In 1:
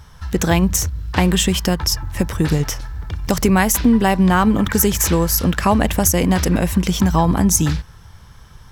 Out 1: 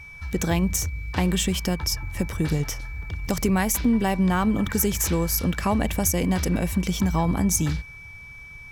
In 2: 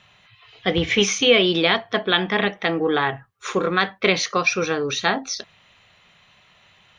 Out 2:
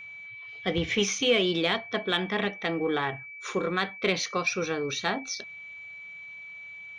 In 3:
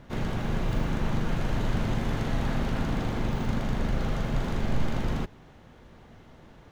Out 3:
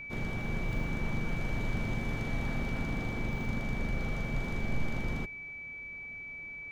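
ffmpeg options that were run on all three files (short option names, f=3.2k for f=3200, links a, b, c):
-filter_complex "[0:a]equalizer=f=1.5k:w=0.43:g=-2.5,aeval=exprs='val(0)+0.0178*sin(2*PI*2300*n/s)':c=same,asplit=2[a][b];[b]asoftclip=type=tanh:threshold=-14.5dB,volume=-8dB[c];[a][c]amix=inputs=2:normalize=0,volume=-8.5dB"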